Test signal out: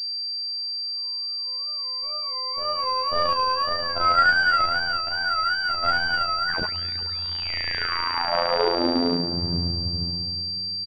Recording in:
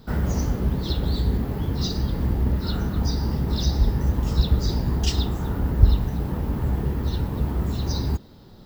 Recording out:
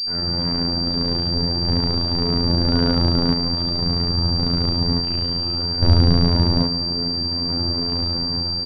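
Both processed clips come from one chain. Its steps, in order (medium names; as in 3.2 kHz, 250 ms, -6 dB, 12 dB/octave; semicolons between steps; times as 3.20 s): comb filter that takes the minimum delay 7.8 ms; feedback delay 157 ms, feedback 48%, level -9.5 dB; one-sided clip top -26.5 dBFS; crackle 120 per s -49 dBFS; spring tank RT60 2.6 s, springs 34/39/44 ms, chirp 70 ms, DRR -9 dB; random-step tremolo 1.2 Hz, depth 65%; wow and flutter 130 cents; robot voice 86 Hz; class-D stage that switches slowly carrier 4.7 kHz; trim +1.5 dB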